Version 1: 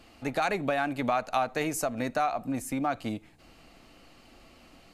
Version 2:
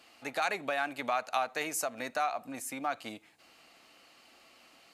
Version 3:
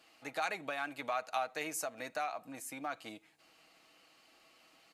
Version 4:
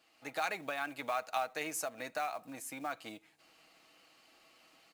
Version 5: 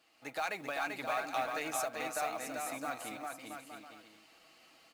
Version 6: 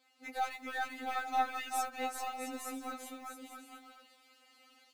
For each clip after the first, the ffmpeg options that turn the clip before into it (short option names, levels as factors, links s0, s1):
-af "highpass=f=960:p=1"
-af "aecho=1:1:6.3:0.35,volume=0.531"
-af "dynaudnorm=f=140:g=3:m=2,acrusher=bits=5:mode=log:mix=0:aa=0.000001,volume=0.531"
-filter_complex "[0:a]asoftclip=type=tanh:threshold=0.0596,asplit=2[s0][s1];[s1]aecho=0:1:390|663|854.1|987.9|1082:0.631|0.398|0.251|0.158|0.1[s2];[s0][s2]amix=inputs=2:normalize=0"
-af "aeval=exprs='0.0794*(cos(1*acos(clip(val(0)/0.0794,-1,1)))-cos(1*PI/2))+0.00891*(cos(2*acos(clip(val(0)/0.0794,-1,1)))-cos(2*PI/2))':c=same,afftfilt=real='re*3.46*eq(mod(b,12),0)':imag='im*3.46*eq(mod(b,12),0)':win_size=2048:overlap=0.75"